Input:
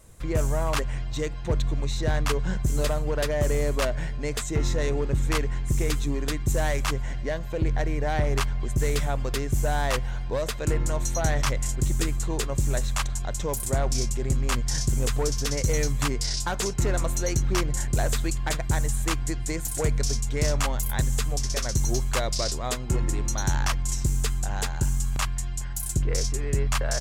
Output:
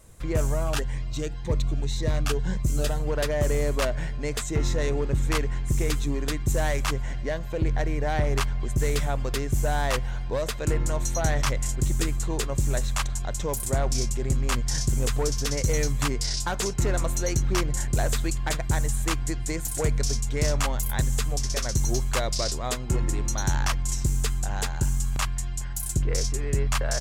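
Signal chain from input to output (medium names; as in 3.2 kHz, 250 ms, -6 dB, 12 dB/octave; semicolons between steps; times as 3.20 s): 0.54–3.00 s: Shepard-style phaser rising 1.9 Hz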